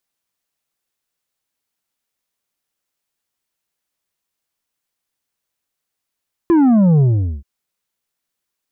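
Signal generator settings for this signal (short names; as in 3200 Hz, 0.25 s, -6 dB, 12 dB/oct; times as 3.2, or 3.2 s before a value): sub drop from 350 Hz, over 0.93 s, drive 6.5 dB, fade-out 0.43 s, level -9.5 dB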